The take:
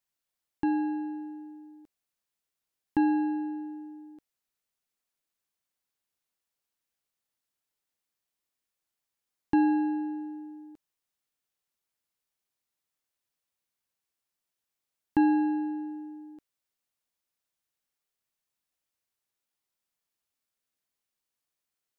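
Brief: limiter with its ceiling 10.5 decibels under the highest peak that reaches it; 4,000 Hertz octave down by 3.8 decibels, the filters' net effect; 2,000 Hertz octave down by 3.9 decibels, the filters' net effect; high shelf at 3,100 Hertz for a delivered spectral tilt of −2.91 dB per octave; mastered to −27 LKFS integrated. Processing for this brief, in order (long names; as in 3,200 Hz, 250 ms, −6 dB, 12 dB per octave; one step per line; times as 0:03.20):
parametric band 2,000 Hz −5.5 dB
high-shelf EQ 3,100 Hz +4 dB
parametric band 4,000 Hz −5.5 dB
level +6.5 dB
brickwall limiter −18 dBFS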